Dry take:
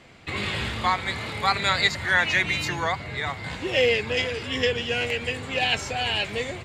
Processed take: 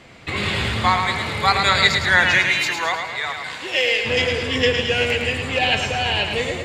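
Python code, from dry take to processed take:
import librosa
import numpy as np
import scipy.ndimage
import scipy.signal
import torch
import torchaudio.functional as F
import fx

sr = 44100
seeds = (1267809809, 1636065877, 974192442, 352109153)

y = fx.highpass(x, sr, hz=fx.line((2.38, 640.0), (4.04, 1300.0)), slope=6, at=(2.38, 4.04), fade=0.02)
y = fx.high_shelf(y, sr, hz=4800.0, db=-6.5, at=(5.58, 6.31))
y = fx.echo_feedback(y, sr, ms=108, feedback_pct=49, wet_db=-6)
y = y * 10.0 ** (5.0 / 20.0)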